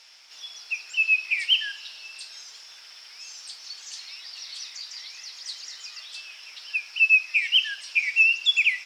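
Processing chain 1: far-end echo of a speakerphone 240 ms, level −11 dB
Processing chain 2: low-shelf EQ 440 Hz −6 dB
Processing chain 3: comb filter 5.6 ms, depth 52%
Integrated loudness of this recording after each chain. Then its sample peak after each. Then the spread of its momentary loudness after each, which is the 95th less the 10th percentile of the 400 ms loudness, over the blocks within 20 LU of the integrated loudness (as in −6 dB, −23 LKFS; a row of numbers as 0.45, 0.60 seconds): −21.0, −21.0, −21.0 LKFS; −9.5, −9.5, −8.0 dBFS; 21, 21, 20 LU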